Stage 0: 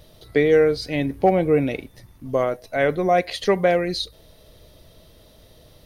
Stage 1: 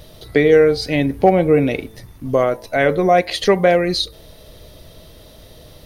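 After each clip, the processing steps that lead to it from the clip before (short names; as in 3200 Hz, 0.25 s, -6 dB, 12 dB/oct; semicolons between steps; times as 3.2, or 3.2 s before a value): de-hum 110.5 Hz, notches 12; in parallel at -2 dB: compressor, threshold -26 dBFS, peak gain reduction 14 dB; on the sum: gain +3 dB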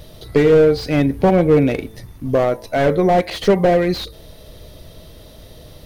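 low shelf 370 Hz +3 dB; slew limiter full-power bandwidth 180 Hz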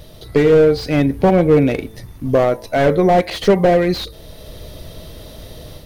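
AGC gain up to 5.5 dB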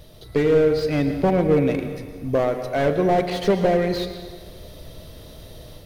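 plate-style reverb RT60 1.6 s, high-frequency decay 0.85×, pre-delay 95 ms, DRR 8 dB; gain -6.5 dB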